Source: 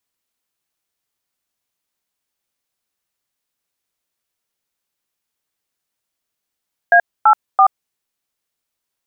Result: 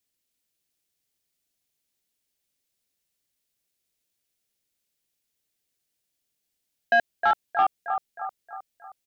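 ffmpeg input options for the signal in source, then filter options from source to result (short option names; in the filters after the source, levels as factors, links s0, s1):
-f lavfi -i "aevalsrc='0.355*clip(min(mod(t,0.334),0.079-mod(t,0.334))/0.002,0,1)*(eq(floor(t/0.334),0)*(sin(2*PI*697*mod(t,0.334))+sin(2*PI*1633*mod(t,0.334)))+eq(floor(t/0.334),1)*(sin(2*PI*852*mod(t,0.334))+sin(2*PI*1336*mod(t,0.334)))+eq(floor(t/0.334),2)*(sin(2*PI*770*mod(t,0.334))+sin(2*PI*1209*mod(t,0.334))))':d=1.002:s=44100"
-af "equalizer=f=1100:t=o:w=1.3:g=-11.5,aecho=1:1:313|626|939|1252|1565|1878:0.398|0.199|0.0995|0.0498|0.0249|0.0124,asoftclip=type=tanh:threshold=0.251"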